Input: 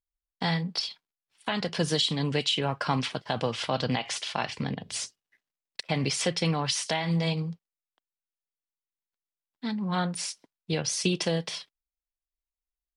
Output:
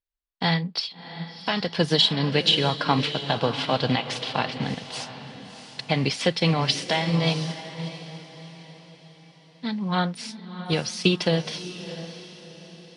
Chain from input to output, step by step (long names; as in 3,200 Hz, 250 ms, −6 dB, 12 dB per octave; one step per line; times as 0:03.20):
high shelf with overshoot 5,500 Hz −7 dB, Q 1.5
feedback delay with all-pass diffusion 676 ms, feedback 44%, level −8 dB
expander for the loud parts 1.5 to 1, over −37 dBFS
level +6.5 dB